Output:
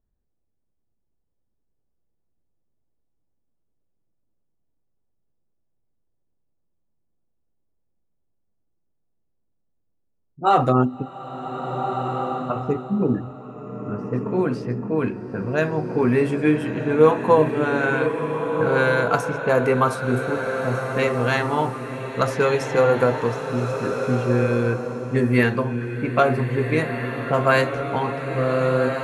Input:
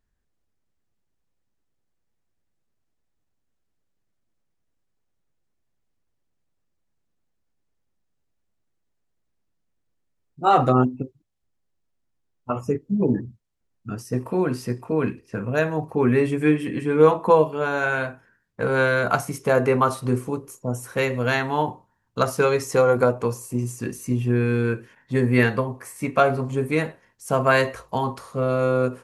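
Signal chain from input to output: low-pass opened by the level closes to 750 Hz, open at -16 dBFS; bloom reverb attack 1.66 s, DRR 4.5 dB

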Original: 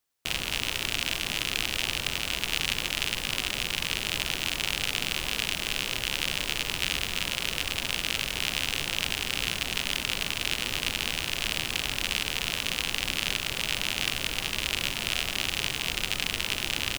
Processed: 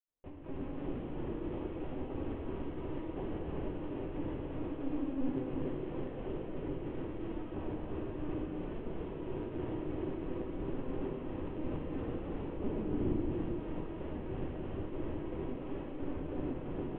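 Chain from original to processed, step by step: 4.58–5.38 octaver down 1 oct, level +4 dB; 12.5–13.14 low shelf 230 Hz +9 dB; AGC gain up to 12 dB; limiter -10 dBFS, peak gain reduction 9 dB; step gate ".xxx..xxx" 200 bpm -60 dB; flange 0.19 Hz, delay 9.5 ms, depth 2.4 ms, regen +53%; frequency shift +150 Hz; ladder band-pass 350 Hz, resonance 45%; air absorption 400 m; LPC vocoder at 8 kHz pitch kept; non-linear reverb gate 0.49 s flat, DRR -5 dB; gain +11.5 dB

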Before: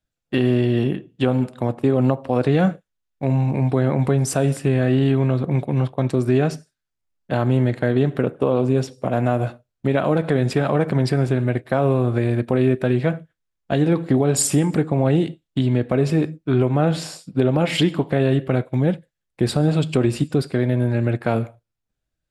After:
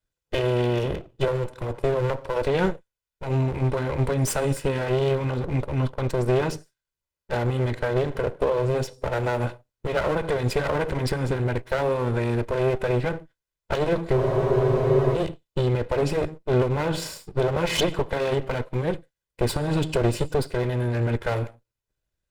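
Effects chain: minimum comb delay 2 ms; spectral freeze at 14.19, 0.97 s

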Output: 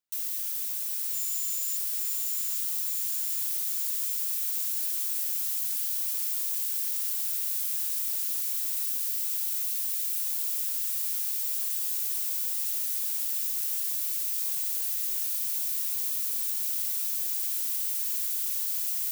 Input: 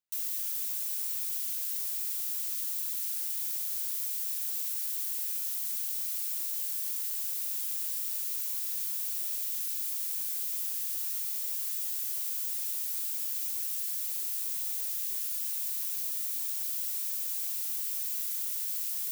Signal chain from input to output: 1.13–1.76 whine 7100 Hz -37 dBFS; 8.71–10.5 frequency shift +200 Hz; diffused feedback echo 0.918 s, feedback 67%, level -4.5 dB; gain +1.5 dB

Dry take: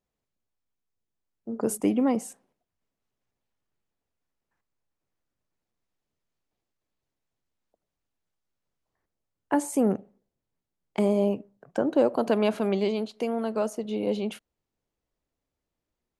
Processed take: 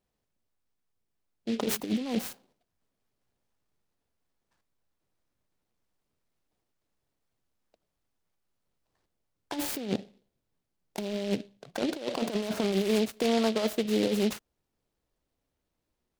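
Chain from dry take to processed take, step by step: negative-ratio compressor -27 dBFS, ratio -0.5; noise-modulated delay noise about 3000 Hz, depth 0.089 ms

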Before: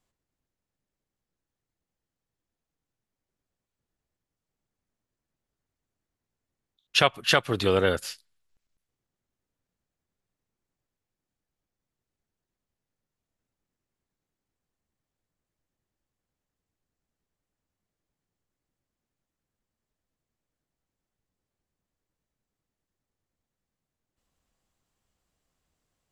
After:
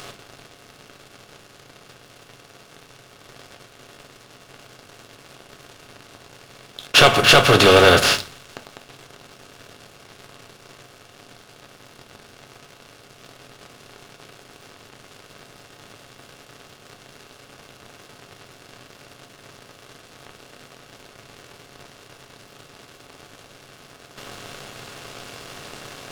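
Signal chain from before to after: per-bin compression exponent 0.4; sample leveller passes 3; upward compressor, threshold -42 dBFS; on a send: reverb RT60 0.30 s, pre-delay 3 ms, DRR 6.5 dB; on the sum: gain -3 dB

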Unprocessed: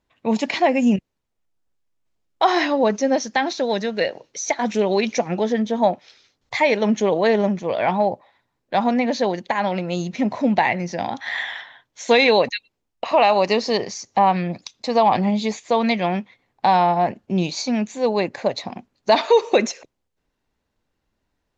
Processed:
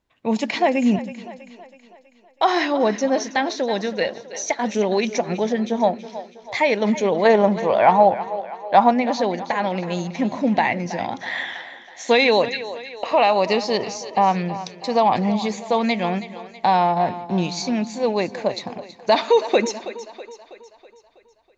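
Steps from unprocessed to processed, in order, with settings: 7.25–8.92 bell 900 Hz +9 dB 1.6 oct; on a send: split-band echo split 320 Hz, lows 0.132 s, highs 0.324 s, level -14 dB; on the sum: gain -1 dB

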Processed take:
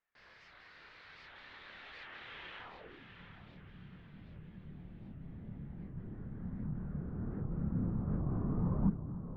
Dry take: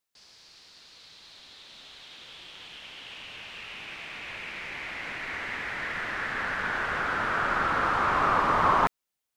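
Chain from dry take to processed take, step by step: low-pass sweep 1800 Hz -> 180 Hz, 2.56–3.08; on a send: diffused feedback echo 0.723 s, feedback 49%, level -9.5 dB; on the sum: chorus voices 4, 0.43 Hz, delay 28 ms, depth 1.4 ms; record warp 78 rpm, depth 250 cents; gain +2 dB

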